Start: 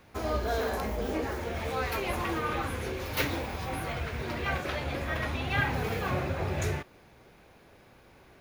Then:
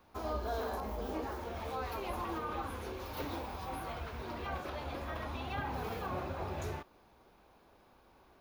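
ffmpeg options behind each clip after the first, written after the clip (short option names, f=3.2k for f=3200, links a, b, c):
-filter_complex "[0:a]equalizer=f=125:t=o:w=1:g=-9,equalizer=f=500:t=o:w=1:g=-3,equalizer=f=1k:t=o:w=1:g=5,equalizer=f=2k:t=o:w=1:g=-8,equalizer=f=8k:t=o:w=1:g=-6,acrossover=split=870[a][b];[b]alimiter=level_in=6.5dB:limit=-24dB:level=0:latency=1:release=111,volume=-6.5dB[c];[a][c]amix=inputs=2:normalize=0,volume=-5dB"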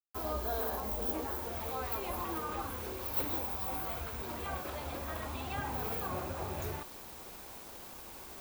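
-af "areverse,acompressor=mode=upward:threshold=-41dB:ratio=2.5,areverse,aexciter=amount=5.8:drive=6.8:freq=12k,acrusher=bits=7:mix=0:aa=0.000001"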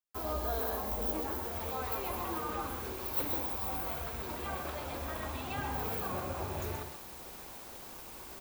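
-af "aecho=1:1:131:0.473"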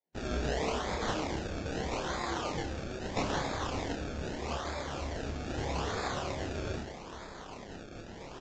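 -filter_complex "[0:a]acrusher=samples=30:mix=1:aa=0.000001:lfo=1:lforange=30:lforate=0.79,asplit=2[a][b];[b]adelay=29,volume=-3.5dB[c];[a][c]amix=inputs=2:normalize=0" -ar 16000 -c:a libvorbis -b:a 48k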